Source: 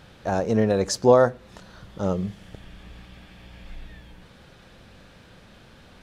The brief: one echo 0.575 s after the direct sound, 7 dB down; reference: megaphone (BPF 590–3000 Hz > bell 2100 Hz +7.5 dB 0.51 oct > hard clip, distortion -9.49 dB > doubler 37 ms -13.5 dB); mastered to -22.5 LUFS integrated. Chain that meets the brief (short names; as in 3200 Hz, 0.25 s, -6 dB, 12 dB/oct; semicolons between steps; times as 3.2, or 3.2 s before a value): BPF 590–3000 Hz; bell 2100 Hz +7.5 dB 0.51 oct; echo 0.575 s -7 dB; hard clip -19 dBFS; doubler 37 ms -13.5 dB; gain +6.5 dB